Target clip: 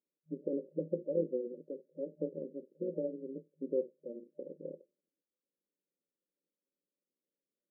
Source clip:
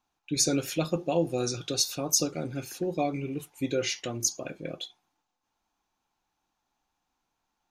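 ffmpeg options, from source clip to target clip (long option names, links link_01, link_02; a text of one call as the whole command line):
ffmpeg -i in.wav -af "tremolo=f=130:d=0.75,equalizer=frequency=210:width_type=o:width=2:gain=-12,afftfilt=real='re*between(b*sr/4096,160,600)':imag='im*between(b*sr/4096,160,600)':win_size=4096:overlap=0.75,volume=3.5dB" out.wav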